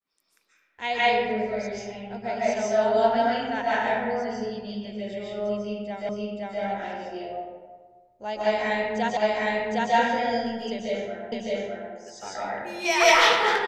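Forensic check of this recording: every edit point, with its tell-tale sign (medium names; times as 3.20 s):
6.09 s: repeat of the last 0.52 s
9.17 s: repeat of the last 0.76 s
11.32 s: repeat of the last 0.61 s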